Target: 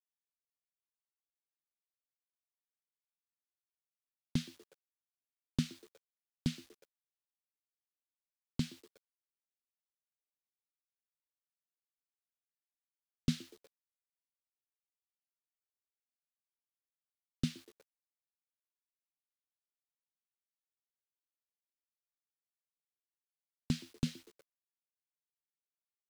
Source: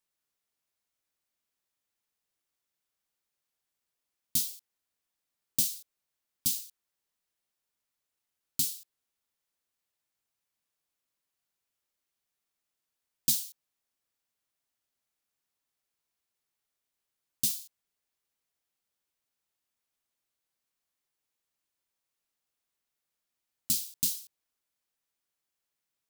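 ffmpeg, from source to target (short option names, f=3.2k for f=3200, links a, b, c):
-filter_complex "[0:a]acrossover=split=510|1000[a][b][c];[b]acrusher=samples=28:mix=1:aa=0.000001[d];[c]lowpass=f=1.3k:t=q:w=2.4[e];[a][d][e]amix=inputs=3:normalize=0,asplit=4[f][g][h][i];[g]adelay=120,afreqshift=98,volume=-22dB[j];[h]adelay=240,afreqshift=196,volume=-28.7dB[k];[i]adelay=360,afreqshift=294,volume=-35.5dB[l];[f][j][k][l]amix=inputs=4:normalize=0,acrusher=bits=11:mix=0:aa=0.000001,volume=10.5dB"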